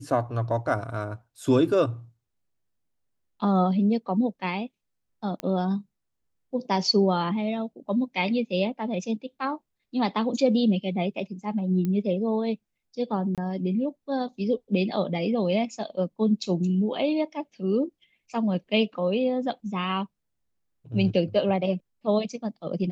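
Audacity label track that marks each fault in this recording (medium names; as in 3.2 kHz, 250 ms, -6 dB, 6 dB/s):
5.400000	5.400000	pop -17 dBFS
11.850000	11.850000	pop -18 dBFS
13.350000	13.380000	dropout 27 ms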